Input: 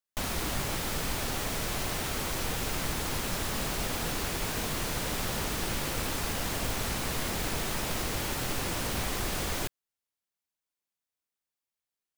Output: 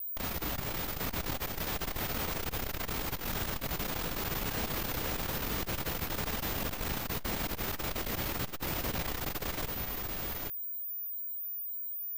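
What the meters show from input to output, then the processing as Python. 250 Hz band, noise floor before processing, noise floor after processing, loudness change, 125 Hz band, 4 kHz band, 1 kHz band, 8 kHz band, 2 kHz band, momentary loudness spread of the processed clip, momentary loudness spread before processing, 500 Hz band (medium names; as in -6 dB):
-3.0 dB, under -85 dBFS, -41 dBFS, -2.5 dB, -3.0 dB, -4.5 dB, -3.5 dB, -7.5 dB, -3.5 dB, 2 LU, 0 LU, -3.0 dB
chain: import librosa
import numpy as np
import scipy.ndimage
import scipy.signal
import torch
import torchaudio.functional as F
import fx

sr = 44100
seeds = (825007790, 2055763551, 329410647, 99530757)

y = fx.high_shelf(x, sr, hz=8900.0, db=-10.5)
y = y + 10.0 ** (-4.0 / 20.0) * np.pad(y, (int(824 * sr / 1000.0), 0))[:len(y)]
y = y + 10.0 ** (-33.0 / 20.0) * np.sin(2.0 * np.pi * 15000.0 * np.arange(len(y)) / sr)
y = fx.vibrato(y, sr, rate_hz=1.8, depth_cents=27.0)
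y = fx.transformer_sat(y, sr, knee_hz=140.0)
y = y * librosa.db_to_amplitude(-2.0)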